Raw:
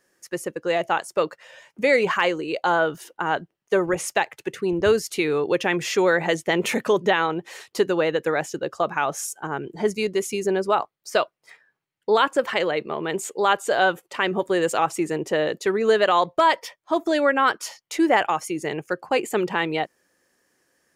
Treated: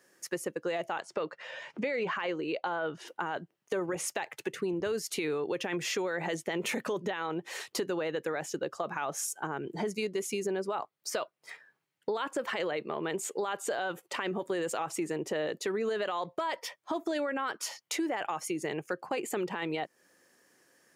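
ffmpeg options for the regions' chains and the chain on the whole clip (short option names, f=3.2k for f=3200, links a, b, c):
-filter_complex "[0:a]asettb=1/sr,asplit=3[a][b][c];[a]atrim=end=1.004[d];[b]atrim=start=1:end=3.08,asetpts=PTS-STARTPTS,afade=t=in:d=0.004:c=qsin,afade=t=out:st=2.076:d=0.004:c=qsin,lowpass=4.3k,acompressor=mode=upward:threshold=-38dB:ratio=2.5:attack=3.2:release=140:knee=2.83:detection=peak[e];[c]atrim=start=3.076[f];[d][e]acrossfade=d=0.004:c1=hsin:c2=qsin[g];[g][f]acrossfade=d=0.004:c1=qsin:c2=hsin,highpass=120,alimiter=limit=-16dB:level=0:latency=1:release=15,acompressor=threshold=-35dB:ratio=3,volume=2dB"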